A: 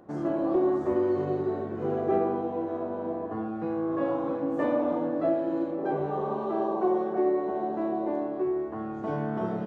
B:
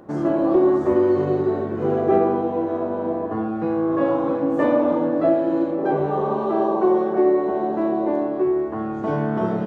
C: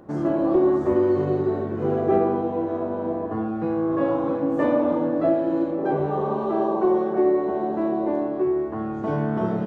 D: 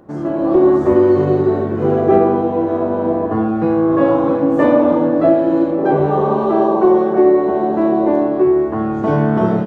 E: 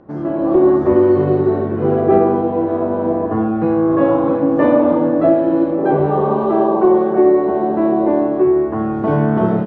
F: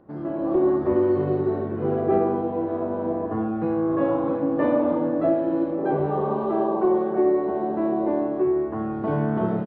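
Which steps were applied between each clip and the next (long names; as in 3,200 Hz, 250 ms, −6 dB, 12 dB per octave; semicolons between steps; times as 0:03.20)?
notch filter 720 Hz, Q 22; level +8 dB
low-shelf EQ 150 Hz +5.5 dB; level −3 dB
automatic gain control gain up to 8.5 dB; level +1.5 dB
high-frequency loss of the air 190 metres
downsampling to 11,025 Hz; level −8.5 dB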